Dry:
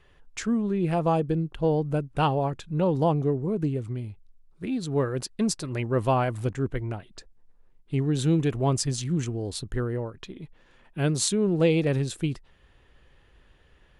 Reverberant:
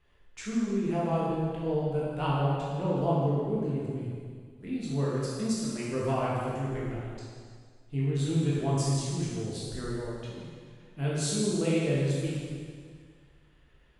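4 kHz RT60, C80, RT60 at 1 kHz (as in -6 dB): 1.8 s, 0.0 dB, 1.9 s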